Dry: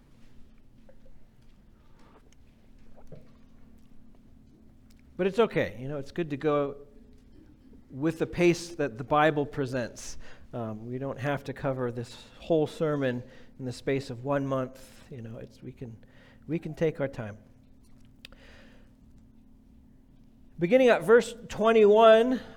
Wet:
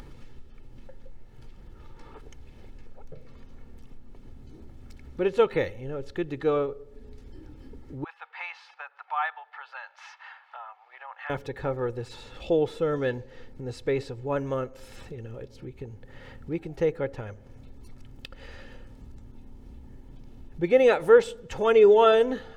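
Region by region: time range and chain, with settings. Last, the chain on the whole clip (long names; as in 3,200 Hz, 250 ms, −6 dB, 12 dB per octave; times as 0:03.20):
0:08.04–0:11.30: Butterworth high-pass 790 Hz 48 dB per octave + high-frequency loss of the air 390 metres
whole clip: high-shelf EQ 7,300 Hz −8.5 dB; comb filter 2.3 ms, depth 51%; upward compression, threshold −34 dBFS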